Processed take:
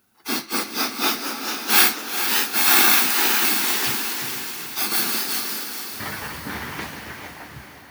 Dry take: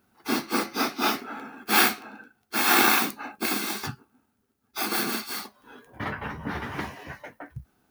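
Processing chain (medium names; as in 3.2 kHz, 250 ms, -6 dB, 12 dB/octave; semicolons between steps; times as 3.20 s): treble shelf 2.2 kHz +10.5 dB; on a send: echo that smears into a reverb 455 ms, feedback 56%, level -7.5 dB; on the sum: ever faster or slower copies 771 ms, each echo +2 st, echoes 2, each echo -6 dB; trim -2.5 dB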